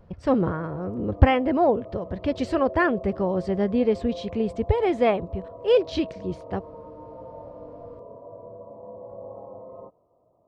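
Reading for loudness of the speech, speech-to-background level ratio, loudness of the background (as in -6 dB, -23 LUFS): -24.5 LUFS, 16.5 dB, -41.0 LUFS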